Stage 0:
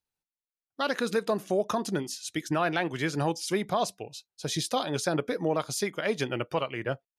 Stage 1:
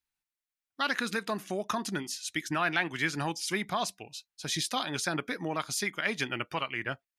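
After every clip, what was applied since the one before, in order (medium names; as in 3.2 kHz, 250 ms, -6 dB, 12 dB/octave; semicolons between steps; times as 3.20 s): ten-band graphic EQ 125 Hz -6 dB, 500 Hz -11 dB, 2 kHz +5 dB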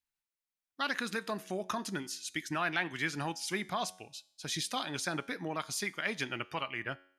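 feedback comb 92 Hz, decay 0.62 s, harmonics all, mix 40%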